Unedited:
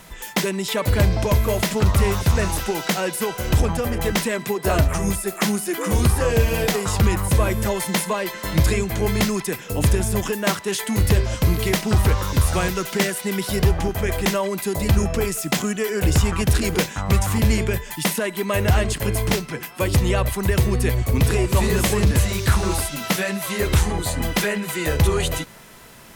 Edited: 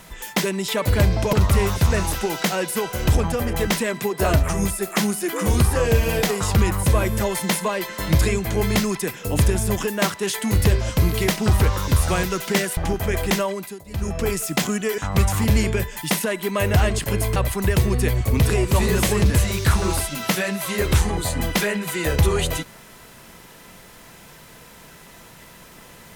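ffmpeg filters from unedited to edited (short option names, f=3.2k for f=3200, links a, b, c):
-filter_complex "[0:a]asplit=7[a][b][c][d][e][f][g];[a]atrim=end=1.332[h];[b]atrim=start=1.778:end=13.222[i];[c]atrim=start=13.718:end=14.79,asetpts=PTS-STARTPTS,afade=t=out:st=0.622:d=0.45:silence=0.0630957[j];[d]atrim=start=14.79:end=14.8,asetpts=PTS-STARTPTS,volume=-24dB[k];[e]atrim=start=14.8:end=15.932,asetpts=PTS-STARTPTS,afade=t=in:d=0.45:silence=0.0630957[l];[f]atrim=start=16.918:end=19.302[m];[g]atrim=start=20.168[n];[h][i]acrossfade=d=0.004:c1=hsin:c2=hsin[o];[j][k][l]concat=n=3:v=0:a=1[p];[o][p]acrossfade=d=0.004:c1=hsin:c2=hsin[q];[q][m]acrossfade=d=0.004:c1=hsin:c2=hsin[r];[r][n]acrossfade=d=0.004:c1=hsin:c2=hsin"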